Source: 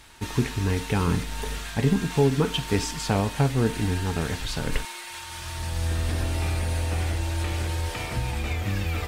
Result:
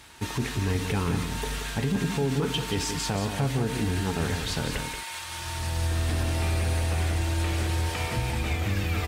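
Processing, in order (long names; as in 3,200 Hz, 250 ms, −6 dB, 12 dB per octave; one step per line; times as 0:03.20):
high-pass filter 57 Hz
brickwall limiter −18.5 dBFS, peak gain reduction 8.5 dB
soft clipping −16.5 dBFS, distortion −27 dB
single-tap delay 179 ms −7.5 dB
level +1 dB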